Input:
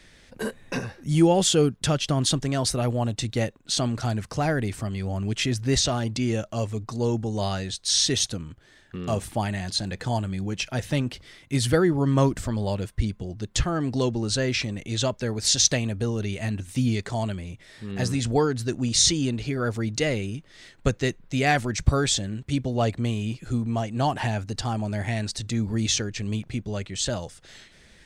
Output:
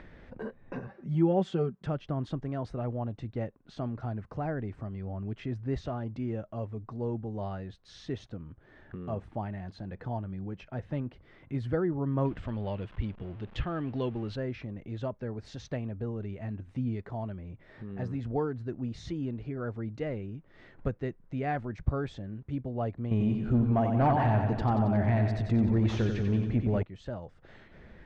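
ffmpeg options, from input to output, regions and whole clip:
-filter_complex "[0:a]asettb=1/sr,asplit=3[a][b][c];[a]atrim=end=0.874[d];[b]atrim=start=0.87:end=1.86,asetpts=PTS-STARTPTS,afade=t=in:d=0.004:c=qsin,afade=t=out:st=0.986:d=0.004:c=qsin,highpass=110,aecho=1:1:5.2:0.71,atrim=end_sample=43659[e];[c]atrim=start=1.856[f];[d][e]acrossfade=d=0.004:c1=hsin:c2=qsin[g];[g][f]acrossfade=d=0.004:c1=qsin:c2=hsin,asettb=1/sr,asplit=3[h][i][j];[h]atrim=end=12.254[k];[i]atrim=start=12.25:end=14.36,asetpts=PTS-STARTPTS,afade=t=in:d=0.004:c=qsin,afade=t=out:st=2.106:d=0.004:c=qsin,aeval=exprs='val(0)+0.5*0.0126*sgn(val(0))':c=same,equalizer=f=3k:t=o:w=1.2:g=13.5[l];[j]atrim=start=14.356[m];[k][l]acrossfade=d=0.004:c1=hsin:c2=qsin[n];[n][m]acrossfade=d=0.004:c1=qsin:c2=hsin,asettb=1/sr,asplit=3[o][p][q];[o]atrim=end=23.114[r];[p]atrim=start=23.11:end=26.83,asetpts=PTS-STARTPTS,afade=t=in:d=0.004:c=qsin,afade=t=out:st=3.716:d=0.004:c=qsin,aecho=1:1:91|182|273|364|455|546|637|728:0.473|0.284|0.17|0.102|0.0613|0.0368|0.0221|0.0132,atrim=end_sample=164052,aeval=exprs='0.299*sin(PI/2*2.24*val(0)/0.299)':c=same[s];[q]atrim=start=26.826[t];[r][s]acrossfade=d=0.004:c1=hsin:c2=qsin[u];[u][t]acrossfade=d=0.004:c1=qsin:c2=hsin,acompressor=mode=upward:threshold=-27dB:ratio=2.5,lowpass=1.3k,volume=-8.5dB"

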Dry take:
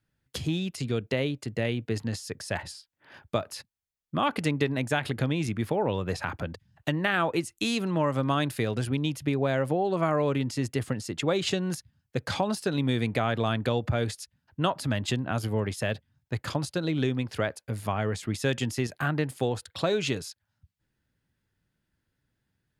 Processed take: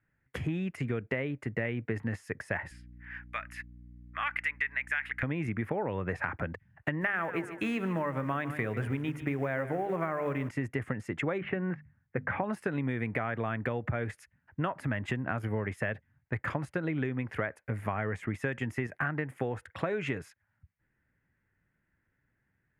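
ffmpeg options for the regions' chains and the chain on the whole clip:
-filter_complex "[0:a]asettb=1/sr,asplit=3[a][b][c];[a]atrim=end=2.714[d];[b]atrim=start=2.71:end=5.23,asetpts=PTS-STARTPTS,afade=t=in:d=0.004:c=qsin,afade=t=out:st=2.516:d=0.004:c=qsin,highpass=f=1.9k:t=q:w=1.6,aeval=exprs='val(0)+0.00355*(sin(2*PI*60*n/s)+sin(2*PI*2*60*n/s)/2+sin(2*PI*3*60*n/s)/3+sin(2*PI*4*60*n/s)/4+sin(2*PI*5*60*n/s)/5)':c=same[e];[c]atrim=start=5.226[f];[d][e]acrossfade=d=0.004:c1=hsin:c2=qsin[g];[g][f]acrossfade=d=0.004:c1=qsin:c2=hsin,asettb=1/sr,asplit=3[h][i][j];[h]atrim=end=7.014[k];[i]atrim=start=7.01:end=10.49,asetpts=PTS-STARTPTS,afade=t=in:d=0.004:c=qsin,afade=t=out:st=3.476:d=0.004:c=qsin,bandreject=f=50:t=h:w=6,bandreject=f=100:t=h:w=6,bandreject=f=150:t=h:w=6,bandreject=f=200:t=h:w=6,bandreject=f=250:t=h:w=6,bandreject=f=300:t=h:w=6,bandreject=f=350:t=h:w=6,bandreject=f=400:t=h:w=6,bandreject=f=450:t=h:w=6,acrusher=bits=5:mode=log:mix=0:aa=0.000001,aecho=1:1:146|292|438:0.178|0.0622|0.0218,atrim=end_sample=153468[l];[j]atrim=start=10.486[m];[k][l]acrossfade=d=0.004:c1=hsin:c2=qsin[n];[n][m]acrossfade=d=0.004:c1=qsin:c2=hsin,asettb=1/sr,asplit=3[o][p][q];[o]atrim=end=11.384[r];[p]atrim=start=11.38:end=12.44,asetpts=PTS-STARTPTS,afade=t=in:d=0.004:c=qsin,afade=t=out:st=1.056:d=0.004:c=qsin,lowpass=f=2.4k:w=0.5412,lowpass=f=2.4k:w=1.3066,bandreject=f=50:t=h:w=6,bandreject=f=100:t=h:w=6,bandreject=f=150:t=h:w=6,bandreject=f=200:t=h:w=6,bandreject=f=250:t=h:w=6[s];[q]atrim=start=12.436[t];[r][s]acrossfade=d=0.004:c1=hsin:c2=qsin[u];[u][t]acrossfade=d=0.004:c1=qsin:c2=hsin,highshelf=f=2.9k:t=q:w=3:g=-13.5,acompressor=threshold=-28dB:ratio=6"

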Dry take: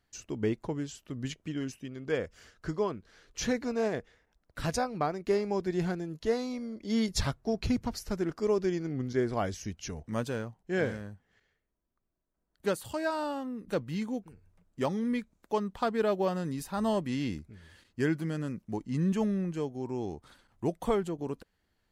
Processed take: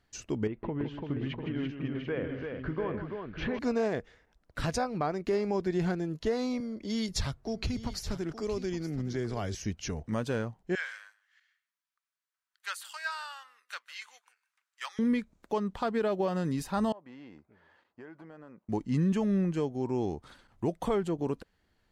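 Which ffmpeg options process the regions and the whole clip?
-filter_complex "[0:a]asettb=1/sr,asplit=3[a][b][c];[a]atrim=end=0.474[d];[b]atrim=start=0.47:end=3.59,asetpts=PTS-STARTPTS,afade=t=in:d=0.004:c=qsin,afade=t=out:st=3.116:d=0.004:c=qsin,lowpass=f=2.9k:w=0.5412,lowpass=f=2.9k:w=1.3066,acompressor=threshold=-33dB:ratio=5:attack=3.2:release=140:knee=1:detection=peak,aecho=1:1:159|338|695|742:0.335|0.562|0.398|0.299,atrim=end_sample=137592[e];[c]atrim=start=3.586[f];[d][e]acrossfade=d=0.004:c1=hsin:c2=qsin[g];[g][f]acrossfade=d=0.004:c1=qsin:c2=hsin,asettb=1/sr,asplit=3[h][i][j];[h]atrim=end=6.604[k];[i]atrim=start=6.6:end=9.55,asetpts=PTS-STARTPTS,afade=t=in:d=0.004:c=qsin,afade=t=out:st=2.946:d=0.004:c=qsin,acrossover=split=120|3000[l][m][n];[m]acompressor=threshold=-39dB:ratio=2.5:attack=3.2:release=140:knee=2.83:detection=peak[o];[l][o][n]amix=inputs=3:normalize=0,aecho=1:1:869:0.2,atrim=end_sample=130095[p];[j]atrim=start=9.546[q];[k][p]acrossfade=d=0.004:c1=hsin:c2=qsin[r];[r][q]acrossfade=d=0.004:c1=qsin:c2=hsin,asettb=1/sr,asplit=3[s][t][u];[s]atrim=end=10.754[v];[t]atrim=start=10.75:end=14.99,asetpts=PTS-STARTPTS,afade=t=in:d=0.004:c=qsin,afade=t=out:st=4.236:d=0.004:c=qsin,highpass=f=1.3k:w=0.5412,highpass=f=1.3k:w=1.3066,aecho=1:1:154:0.075,atrim=end_sample=186984[w];[u]atrim=start=14.986[x];[v][w]acrossfade=d=0.004:c1=hsin:c2=qsin[y];[y][x]acrossfade=d=0.004:c1=qsin:c2=hsin,asettb=1/sr,asplit=3[z][aa][ab];[z]atrim=end=16.924[ac];[aa]atrim=start=16.92:end=18.69,asetpts=PTS-STARTPTS,afade=t=in:d=0.004:c=qsin,afade=t=out:st=1.766:d=0.004:c=qsin,bandpass=f=850:t=q:w=1.7,acompressor=threshold=-50dB:ratio=4:attack=3.2:release=140:knee=1:detection=peak[ad];[ab]atrim=start=18.686[ae];[ac][ad]acrossfade=d=0.004:c1=hsin:c2=qsin[af];[af][ae]acrossfade=d=0.004:c1=qsin:c2=hsin,highshelf=f=9.4k:g=-10,alimiter=limit=-24dB:level=0:latency=1:release=134,volume=4dB"

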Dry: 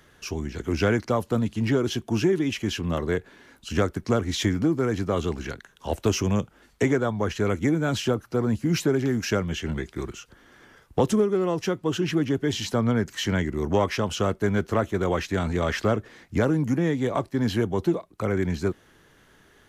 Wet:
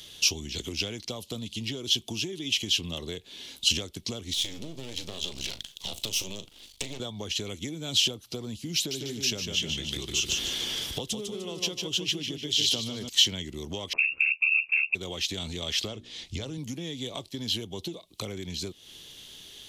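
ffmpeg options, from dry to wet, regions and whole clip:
-filter_complex "[0:a]asettb=1/sr,asplit=3[a][b][c];[a]atrim=end=4.334[d];[b]atrim=start=4.33:end=7,asetpts=PTS-STARTPTS,afade=t=in:d=0.004:c=qsin,afade=t=out:st=2.666:d=0.004:c=qsin,acompressor=threshold=-33dB:ratio=3:attack=3.2:release=140:knee=1:detection=peak,aeval=exprs='max(val(0),0)':c=same,asplit=2[e][f];[f]adelay=37,volume=-13dB[g];[e][g]amix=inputs=2:normalize=0,atrim=end_sample=117747[h];[c]atrim=start=6.996[i];[d][h]acrossfade=d=0.004:c1=hsin:c2=qsin[j];[j][i]acrossfade=d=0.004:c1=qsin:c2=hsin,asettb=1/sr,asplit=3[k][l][m];[k]atrim=end=8.764[n];[l]atrim=start=8.76:end=13.09,asetpts=PTS-STARTPTS,afade=t=in:d=0.004:c=qsin,afade=t=out:st=4.326:d=0.004:c=qsin,acompressor=mode=upward:threshold=-28dB:ratio=2.5:attack=3.2:release=140:knee=2.83:detection=peak,aecho=1:1:150|300|450|600:0.531|0.186|0.065|0.0228,atrim=end_sample=190953[o];[m]atrim=start=13.086[p];[n][o]acrossfade=d=0.004:c1=hsin:c2=qsin[q];[q][p]acrossfade=d=0.004:c1=qsin:c2=hsin,asettb=1/sr,asplit=3[r][s][t];[r]atrim=end=13.934[u];[s]atrim=start=13.93:end=14.95,asetpts=PTS-STARTPTS,afade=t=in:d=0.004:c=qsin,afade=t=out:st=1.016:d=0.004:c=qsin,equalizer=f=190:w=0.58:g=11,aeval=exprs='val(0)*sin(2*PI*37*n/s)':c=same,lowpass=f=2.4k:t=q:w=0.5098,lowpass=f=2.4k:t=q:w=0.6013,lowpass=f=2.4k:t=q:w=0.9,lowpass=f=2.4k:t=q:w=2.563,afreqshift=-2800[v];[t]atrim=start=14.946[w];[u][v]acrossfade=d=0.004:c1=hsin:c2=qsin[x];[x][w]acrossfade=d=0.004:c1=qsin:c2=hsin,asettb=1/sr,asplit=3[y][z][aa];[y]atrim=end=15.884[ab];[z]atrim=start=15.88:end=16.58,asetpts=PTS-STARTPTS,afade=t=in:d=0.004:c=qsin,afade=t=out:st=0.696:d=0.004:c=qsin,lowpass=8.3k,bandreject=f=60:t=h:w=6,bandreject=f=120:t=h:w=6,bandreject=f=180:t=h:w=6,bandreject=f=240:t=h:w=6,bandreject=f=300:t=h:w=6,bandreject=f=360:t=h:w=6,asubboost=boost=11.5:cutoff=110[ac];[aa]atrim=start=16.576[ad];[ab][ac]acrossfade=d=0.004:c1=hsin:c2=qsin[ae];[ae][ad]acrossfade=d=0.004:c1=qsin:c2=hsin,acompressor=threshold=-33dB:ratio=10,highshelf=f=2.3k:t=q:w=3:g=13.5"

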